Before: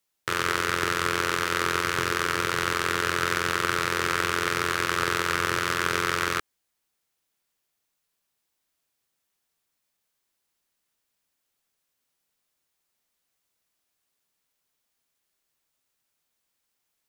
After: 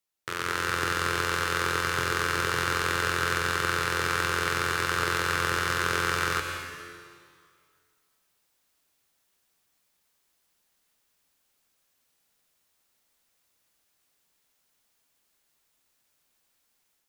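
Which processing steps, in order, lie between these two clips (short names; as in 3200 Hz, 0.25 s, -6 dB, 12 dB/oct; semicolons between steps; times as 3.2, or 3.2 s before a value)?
AGC; on a send: reverb RT60 2.0 s, pre-delay 0.112 s, DRR 4 dB; on the sum: gain -7 dB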